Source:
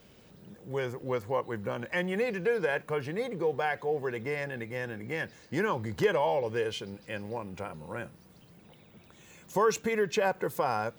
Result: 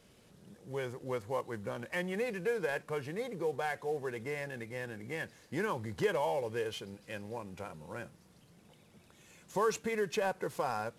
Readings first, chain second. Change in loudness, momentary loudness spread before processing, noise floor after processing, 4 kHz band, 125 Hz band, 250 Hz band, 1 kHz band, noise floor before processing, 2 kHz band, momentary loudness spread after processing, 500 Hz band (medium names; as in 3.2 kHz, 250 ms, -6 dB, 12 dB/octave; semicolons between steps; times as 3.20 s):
-5.0 dB, 12 LU, -63 dBFS, -4.5 dB, -5.0 dB, -5.0 dB, -5.0 dB, -57 dBFS, -5.0 dB, 12 LU, -5.0 dB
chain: CVSD coder 64 kbps; trim -5 dB